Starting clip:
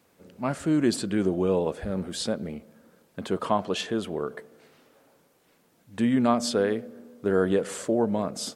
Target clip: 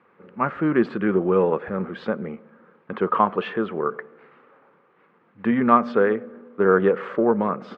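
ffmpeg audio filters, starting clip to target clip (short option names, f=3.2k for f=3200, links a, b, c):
-af "atempo=1.1,aeval=exprs='0.376*(cos(1*acos(clip(val(0)/0.376,-1,1)))-cos(1*PI/2))+0.00473*(cos(7*acos(clip(val(0)/0.376,-1,1)))-cos(7*PI/2))':c=same,highpass=200,equalizer=f=280:t=q:w=4:g=-8,equalizer=f=650:t=q:w=4:g=-9,equalizer=f=1.2k:t=q:w=4:g=7,lowpass=f=2.2k:w=0.5412,lowpass=f=2.2k:w=1.3066,volume=8dB"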